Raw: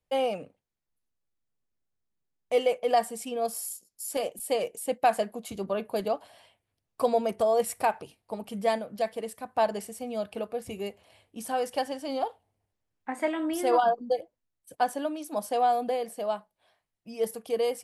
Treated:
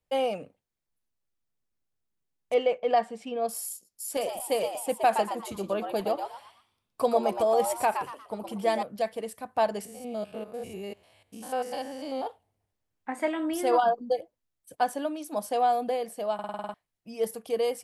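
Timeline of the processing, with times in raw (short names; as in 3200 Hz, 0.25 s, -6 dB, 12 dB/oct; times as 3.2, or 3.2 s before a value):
2.54–3.49 LPF 3400 Hz
4.09–8.83 frequency-shifting echo 0.118 s, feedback 31%, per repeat +130 Hz, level -7 dB
9.85–12.27 stepped spectrum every 0.1 s
16.34 stutter in place 0.05 s, 8 plays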